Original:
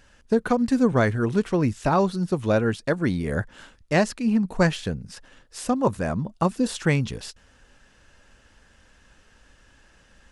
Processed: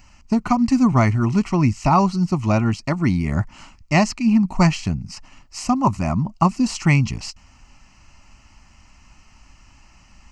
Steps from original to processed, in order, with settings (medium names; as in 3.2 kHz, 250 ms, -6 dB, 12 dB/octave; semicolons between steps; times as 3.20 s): static phaser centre 2.4 kHz, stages 8; trim +8 dB